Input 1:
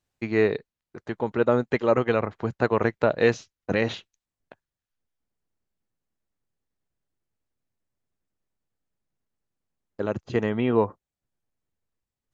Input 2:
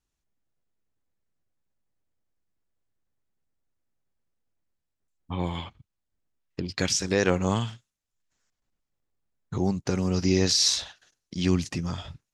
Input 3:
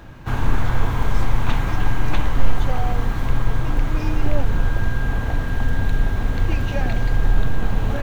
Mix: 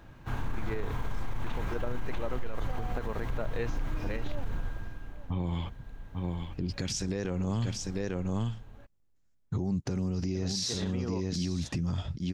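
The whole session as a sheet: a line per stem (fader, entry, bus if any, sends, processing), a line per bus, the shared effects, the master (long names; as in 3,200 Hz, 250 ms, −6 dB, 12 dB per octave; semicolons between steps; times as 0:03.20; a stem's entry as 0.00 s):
−11.5 dB, 0.35 s, no send, no echo send, no processing
−4.5 dB, 0.00 s, no send, echo send −8 dB, low-shelf EQ 400 Hz +11.5 dB
−11.0 dB, 0.00 s, no send, echo send −18.5 dB, automatic ducking −18 dB, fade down 0.85 s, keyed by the second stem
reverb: not used
echo: single-tap delay 845 ms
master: brickwall limiter −23 dBFS, peak gain reduction 16 dB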